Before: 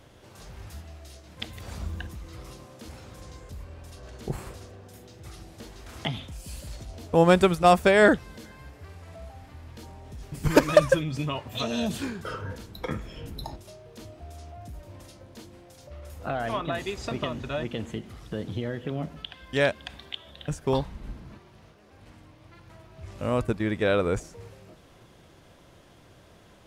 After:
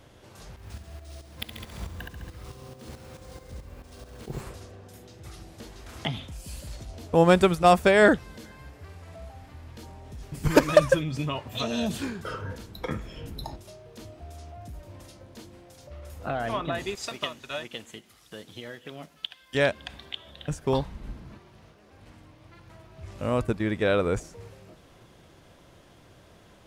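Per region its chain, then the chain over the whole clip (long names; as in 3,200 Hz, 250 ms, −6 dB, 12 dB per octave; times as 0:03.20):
0:00.56–0:04.41: flutter between parallel walls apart 11.8 metres, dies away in 1.1 s + shaped tremolo saw up 4.6 Hz, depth 65% + bad sample-rate conversion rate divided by 3×, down none, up hold
0:16.95–0:19.55: spectral tilt +3.5 dB per octave + expander for the loud parts, over −46 dBFS
whole clip: no processing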